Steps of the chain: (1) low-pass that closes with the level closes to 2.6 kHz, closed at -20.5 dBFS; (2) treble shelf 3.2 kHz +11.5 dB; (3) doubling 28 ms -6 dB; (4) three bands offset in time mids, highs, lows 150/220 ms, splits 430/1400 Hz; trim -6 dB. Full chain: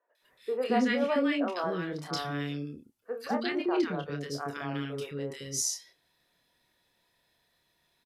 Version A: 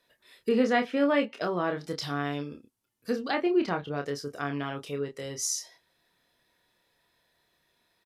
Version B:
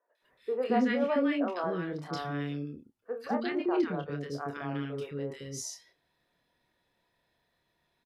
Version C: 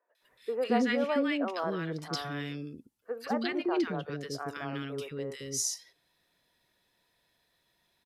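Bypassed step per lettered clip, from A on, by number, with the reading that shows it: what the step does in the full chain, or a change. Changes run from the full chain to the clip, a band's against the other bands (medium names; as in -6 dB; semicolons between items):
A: 4, echo-to-direct 2.5 dB to none; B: 2, 8 kHz band -8.5 dB; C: 3, crest factor change +2.0 dB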